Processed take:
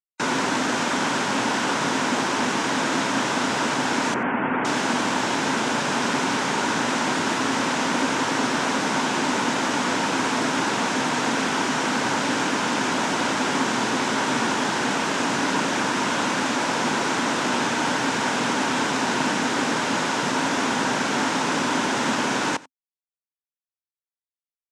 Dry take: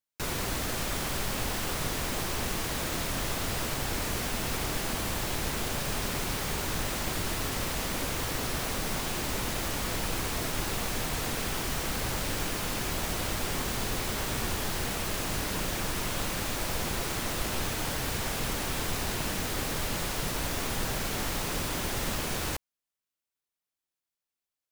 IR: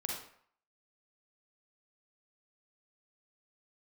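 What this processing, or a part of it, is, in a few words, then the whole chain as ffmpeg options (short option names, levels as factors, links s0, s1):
television speaker: -filter_complex "[0:a]asettb=1/sr,asplit=3[s0][s1][s2];[s0]atrim=end=4.144[s3];[s1]atrim=start=4.14:end=4.65,asetpts=PTS-STARTPTS,afade=t=in:d=0.004:c=qsin,afade=t=out:st=0.506:d=0.004:c=qsin,lowpass=f=2300:w=0.5412,lowpass=f=2300:w=1.3066[s4];[s2]atrim=start=4.646[s5];[s3][s4]acrossfade=d=0.004:c1=hsin:c2=qsin[s6];[s6][s5]acrossfade=d=0.004:c1=qsin:c2=hsin,afftfilt=real='re*gte(hypot(re,im),0.00447)':imag='im*gte(hypot(re,im),0.00447)':win_size=1024:overlap=0.75,highpass=f=160:w=0.5412,highpass=f=160:w=1.3066,equalizer=f=170:t=q:w=4:g=-3,equalizer=f=260:t=q:w=4:g=9,equalizer=f=930:t=q:w=4:g=8,equalizer=f=1500:t=q:w=4:g=6,equalizer=f=4400:t=q:w=4:g=-4,lowpass=f=7300:w=0.5412,lowpass=f=7300:w=1.3066,aecho=1:1:90:0.0891,volume=2.66"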